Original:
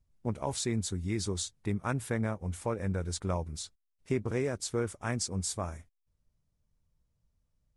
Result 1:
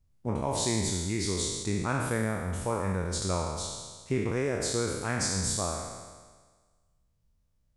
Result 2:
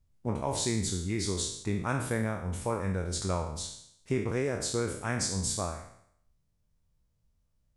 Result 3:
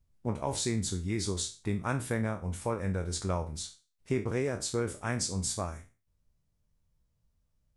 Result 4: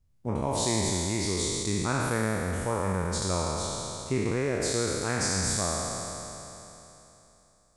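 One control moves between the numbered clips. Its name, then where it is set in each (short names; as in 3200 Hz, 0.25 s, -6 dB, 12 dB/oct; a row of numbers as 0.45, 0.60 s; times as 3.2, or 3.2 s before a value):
spectral trails, RT60: 1.48, 0.69, 0.32, 3.21 s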